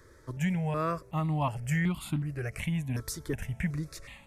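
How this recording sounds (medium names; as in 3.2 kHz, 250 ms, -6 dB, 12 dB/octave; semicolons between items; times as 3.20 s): notches that jump at a steady rate 2.7 Hz 740–1700 Hz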